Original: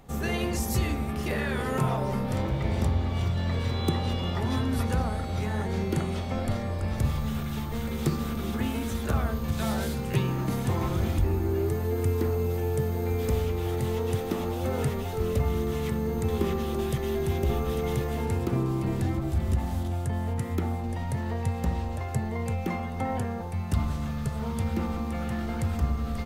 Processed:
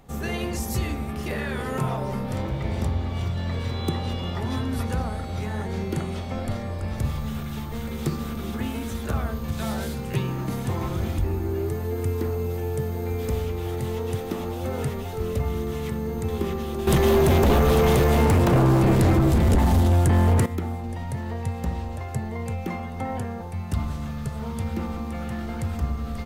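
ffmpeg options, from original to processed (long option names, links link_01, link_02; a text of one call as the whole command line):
ffmpeg -i in.wav -filter_complex "[0:a]asettb=1/sr,asplit=3[link_01][link_02][link_03];[link_01]atrim=end=16.874[link_04];[link_02]atrim=start=16.87:end=20.46,asetpts=PTS-STARTPTS,afade=type=in:duration=0.004:curve=qsin,afade=type=out:start_time=3.586:duration=0.004:curve=qsin,aeval=exprs='0.2*sin(PI/2*3.16*val(0)/0.2)':channel_layout=same[link_05];[link_03]atrim=start=20.456[link_06];[link_04][link_05]acrossfade=duration=0.004:curve1=hsin:curve2=qsin[link_07];[link_07][link_06]acrossfade=duration=0.004:curve1=qsin:curve2=hsin" out.wav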